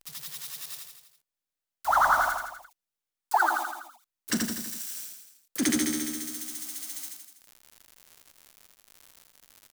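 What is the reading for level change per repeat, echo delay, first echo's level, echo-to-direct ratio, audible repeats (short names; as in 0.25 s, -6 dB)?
-5.0 dB, 82 ms, -3.5 dB, -2.0 dB, 5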